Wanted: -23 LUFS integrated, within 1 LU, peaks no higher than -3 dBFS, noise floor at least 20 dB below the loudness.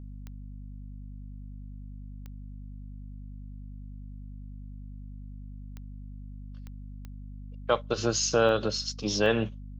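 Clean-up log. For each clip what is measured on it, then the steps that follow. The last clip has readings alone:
clicks found 7; hum 50 Hz; highest harmonic 250 Hz; hum level -39 dBFS; loudness -27.0 LUFS; peak level -10.5 dBFS; loudness target -23.0 LUFS
-> de-click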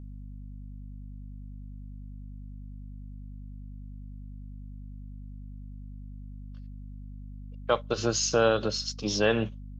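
clicks found 0; hum 50 Hz; highest harmonic 250 Hz; hum level -39 dBFS
-> de-hum 50 Hz, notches 5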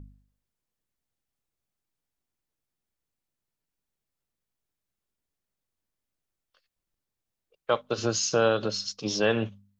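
hum not found; loudness -27.0 LUFS; peak level -10.5 dBFS; loudness target -23.0 LUFS
-> trim +4 dB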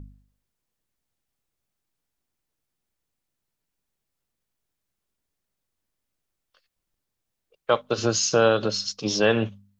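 loudness -23.0 LUFS; peak level -6.5 dBFS; noise floor -83 dBFS

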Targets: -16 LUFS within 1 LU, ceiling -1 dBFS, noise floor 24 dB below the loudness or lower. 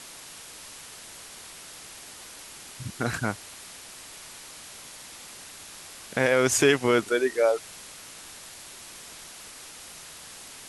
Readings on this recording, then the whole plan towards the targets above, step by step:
noise floor -45 dBFS; noise floor target -49 dBFS; loudness -24.5 LUFS; peak level -7.5 dBFS; loudness target -16.0 LUFS
-> noise reduction 6 dB, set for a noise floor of -45 dBFS; trim +8.5 dB; peak limiter -1 dBFS

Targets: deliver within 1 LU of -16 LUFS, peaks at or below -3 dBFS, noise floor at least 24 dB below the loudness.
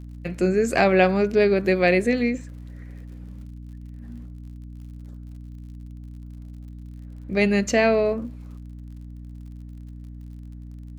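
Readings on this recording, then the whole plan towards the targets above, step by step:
tick rate 54 per s; hum 60 Hz; highest harmonic 300 Hz; hum level -35 dBFS; loudness -21.0 LUFS; peak level -4.0 dBFS; loudness target -16.0 LUFS
-> de-click; de-hum 60 Hz, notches 5; trim +5 dB; peak limiter -3 dBFS

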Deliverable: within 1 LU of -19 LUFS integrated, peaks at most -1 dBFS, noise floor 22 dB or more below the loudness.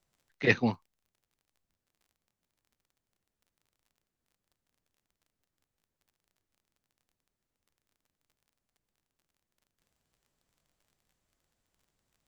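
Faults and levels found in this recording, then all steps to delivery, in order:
tick rate 22 per s; loudness -28.5 LUFS; peak level -9.0 dBFS; loudness target -19.0 LUFS
-> de-click; trim +9.5 dB; peak limiter -1 dBFS

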